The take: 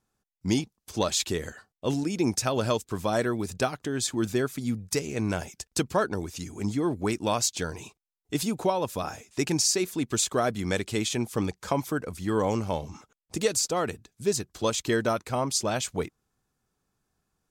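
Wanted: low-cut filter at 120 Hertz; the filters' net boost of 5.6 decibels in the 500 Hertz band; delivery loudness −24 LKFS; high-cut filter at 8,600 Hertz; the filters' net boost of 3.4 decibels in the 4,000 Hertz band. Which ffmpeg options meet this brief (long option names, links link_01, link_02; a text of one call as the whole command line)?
ffmpeg -i in.wav -af "highpass=120,lowpass=8600,equalizer=frequency=500:width_type=o:gain=7,equalizer=frequency=4000:width_type=o:gain=4.5,volume=1.5dB" out.wav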